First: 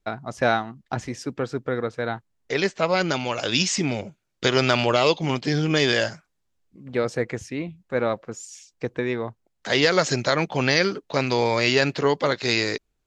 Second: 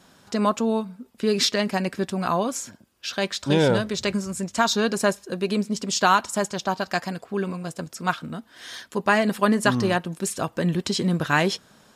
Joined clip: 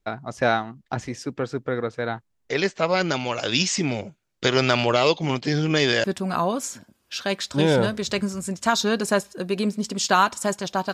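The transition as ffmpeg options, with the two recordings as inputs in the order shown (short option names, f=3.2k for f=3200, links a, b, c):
-filter_complex "[0:a]apad=whole_dur=10.93,atrim=end=10.93,atrim=end=6.042[a];[1:a]atrim=start=1.958:end=6.85[b];[a][b]acrossfade=d=0.004:c1=hsin:c2=hsin"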